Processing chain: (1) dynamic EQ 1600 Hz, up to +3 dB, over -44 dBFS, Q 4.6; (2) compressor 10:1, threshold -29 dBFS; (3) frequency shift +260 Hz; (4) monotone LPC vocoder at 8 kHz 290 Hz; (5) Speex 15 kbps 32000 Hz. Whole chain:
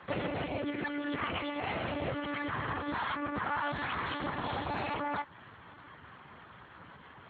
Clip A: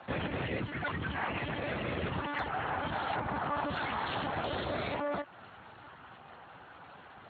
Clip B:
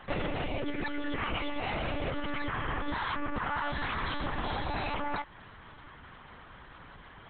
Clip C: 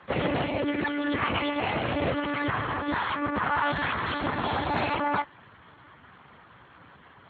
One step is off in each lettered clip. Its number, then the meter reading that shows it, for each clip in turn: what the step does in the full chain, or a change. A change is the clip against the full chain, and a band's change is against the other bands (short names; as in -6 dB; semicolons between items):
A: 3, 125 Hz band +2.5 dB; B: 5, 125 Hz band +2.5 dB; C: 2, mean gain reduction 5.0 dB